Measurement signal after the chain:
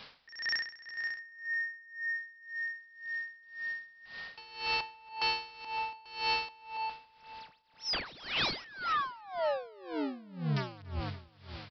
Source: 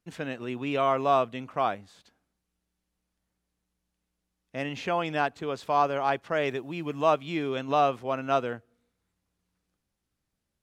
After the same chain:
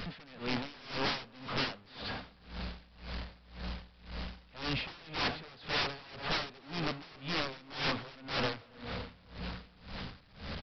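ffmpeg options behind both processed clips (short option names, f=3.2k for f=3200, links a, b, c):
-filter_complex "[0:a]aeval=exprs='val(0)+0.5*0.0266*sgn(val(0))':c=same,equalizer=f=340:t=o:w=0.32:g=-11,aresample=11025,aeval=exprs='(mod(21.1*val(0)+1,2)-1)/21.1':c=same,aresample=44100,asplit=2[a][b];[b]adelay=282,lowpass=f=4.3k:p=1,volume=-8.5dB,asplit=2[c][d];[d]adelay=282,lowpass=f=4.3k:p=1,volume=0.55,asplit=2[e][f];[f]adelay=282,lowpass=f=4.3k:p=1,volume=0.55,asplit=2[g][h];[h]adelay=282,lowpass=f=4.3k:p=1,volume=0.55,asplit=2[i][j];[j]adelay=282,lowpass=f=4.3k:p=1,volume=0.55,asplit=2[k][l];[l]adelay=282,lowpass=f=4.3k:p=1,volume=0.55,asplit=2[m][n];[n]adelay=282,lowpass=f=4.3k:p=1,volume=0.55[o];[a][c][e][g][i][k][m][o]amix=inputs=8:normalize=0,aeval=exprs='val(0)*pow(10,-23*(0.5-0.5*cos(2*PI*1.9*n/s))/20)':c=same"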